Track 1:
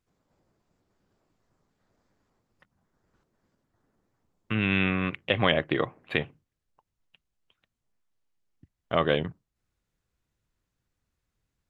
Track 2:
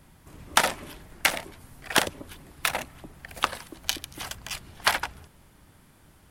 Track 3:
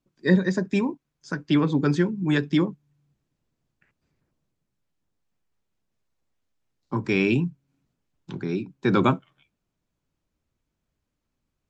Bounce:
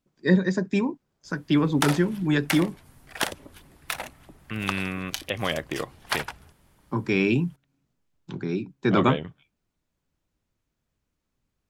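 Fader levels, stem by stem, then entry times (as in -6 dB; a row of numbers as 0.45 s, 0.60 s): -4.5 dB, -5.0 dB, -0.5 dB; 0.00 s, 1.25 s, 0.00 s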